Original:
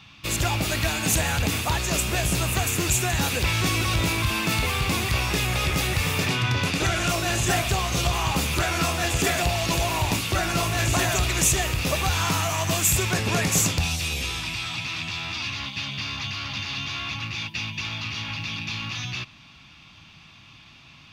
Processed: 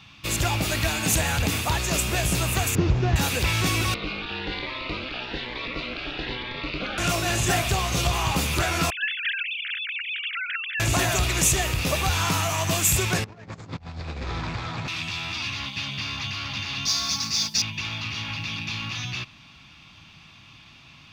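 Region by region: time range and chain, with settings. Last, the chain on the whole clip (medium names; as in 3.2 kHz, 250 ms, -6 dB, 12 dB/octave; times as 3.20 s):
2.75–3.16 s: CVSD coder 32 kbps + tilt shelf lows +7 dB, about 720 Hz
3.94–6.98 s: Chebyshev band-pass 170–4200 Hz, order 4 + ring modulator 130 Hz + Shepard-style phaser rising 1.1 Hz
8.90–10.80 s: formants replaced by sine waves + steep high-pass 1.5 kHz 72 dB/octave
13.24–14.88 s: median filter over 15 samples + low-pass 5.8 kHz 24 dB/octave + compressor with a negative ratio -33 dBFS, ratio -0.5
16.85–17.62 s: resonant high shelf 3.9 kHz +11 dB, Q 3 + comb 4.5 ms, depth 59% + modulation noise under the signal 24 dB
whole clip: none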